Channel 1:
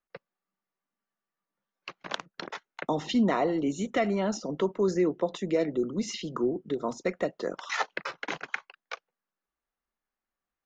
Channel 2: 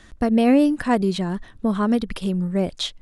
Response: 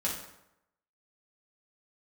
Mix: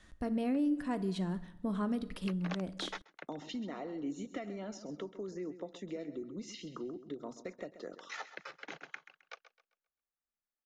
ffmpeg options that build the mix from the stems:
-filter_complex "[0:a]bandreject=frequency=1000:width=8.7,acompressor=threshold=-28dB:ratio=5,adelay=400,volume=-1dB,asplit=2[link_01][link_02];[link_02]volume=-23.5dB[link_03];[1:a]volume=-13dB,asplit=3[link_04][link_05][link_06];[link_05]volume=-15dB[link_07];[link_06]apad=whole_len=487435[link_08];[link_01][link_08]sidechaingate=range=-10dB:threshold=-50dB:ratio=16:detection=peak[link_09];[2:a]atrim=start_sample=2205[link_10];[link_07][link_10]afir=irnorm=-1:irlink=0[link_11];[link_03]aecho=0:1:132|264|396|528|660:1|0.33|0.109|0.0359|0.0119[link_12];[link_09][link_04][link_11][link_12]amix=inputs=4:normalize=0,adynamicequalizer=threshold=0.00282:dfrequency=290:dqfactor=4.3:tfrequency=290:tqfactor=4.3:attack=5:release=100:ratio=0.375:range=4:mode=boostabove:tftype=bell,alimiter=level_in=1dB:limit=-24dB:level=0:latency=1:release=464,volume=-1dB"

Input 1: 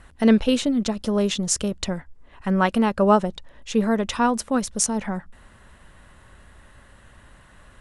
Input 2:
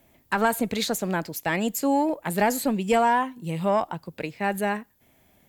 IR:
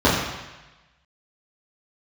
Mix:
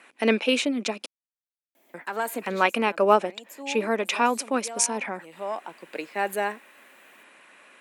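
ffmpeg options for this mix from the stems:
-filter_complex "[0:a]equalizer=frequency=2400:width_type=o:width=0.3:gain=15,volume=-1dB,asplit=3[link_01][link_02][link_03];[link_01]atrim=end=1.06,asetpts=PTS-STARTPTS,afade=type=out:start_time=1.056:duration=0.004:curve=hsin[link_04];[link_02]atrim=start=1.06:end=1.94,asetpts=PTS-STARTPTS,volume=0[link_05];[link_03]atrim=start=1.94,asetpts=PTS-STARTPTS,afade=type=in:duration=0.004:curve=hsin[link_06];[link_04][link_05][link_06]concat=n=3:v=0:a=1,asplit=2[link_07][link_08];[1:a]adelay=1750,volume=0dB[link_09];[link_08]apad=whole_len=319024[link_10];[link_09][link_10]sidechaincompress=threshold=-39dB:ratio=4:attack=9.8:release=725[link_11];[link_07][link_11]amix=inputs=2:normalize=0,highpass=frequency=280:width=0.5412,highpass=frequency=280:width=1.3066"

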